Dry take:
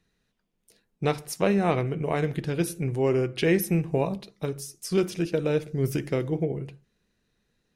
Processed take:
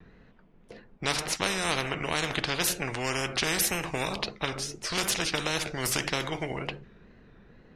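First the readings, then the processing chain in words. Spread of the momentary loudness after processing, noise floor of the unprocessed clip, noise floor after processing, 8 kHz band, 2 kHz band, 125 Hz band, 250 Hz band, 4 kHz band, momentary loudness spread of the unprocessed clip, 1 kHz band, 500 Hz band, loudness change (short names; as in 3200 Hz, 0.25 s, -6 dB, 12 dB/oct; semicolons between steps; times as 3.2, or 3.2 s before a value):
6 LU, -76 dBFS, -57 dBFS, +8.5 dB, +6.0 dB, -9.5 dB, -9.0 dB, +11.0 dB, 10 LU, +1.0 dB, -8.5 dB, -2.0 dB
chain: low-pass opened by the level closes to 1700 Hz, open at -18.5 dBFS; wow and flutter 83 cents; spectral compressor 4:1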